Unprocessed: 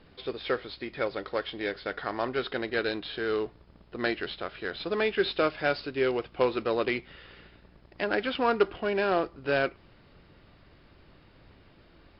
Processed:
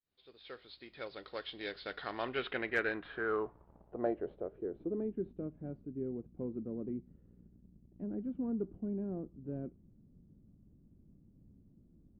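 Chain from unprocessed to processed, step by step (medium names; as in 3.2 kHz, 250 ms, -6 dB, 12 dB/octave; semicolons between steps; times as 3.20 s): fade-in on the opening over 2.52 s; low-pass sweep 4.2 kHz -> 220 Hz, 1.96–5.30 s; hard clipper -13 dBFS, distortion -39 dB; trim -7 dB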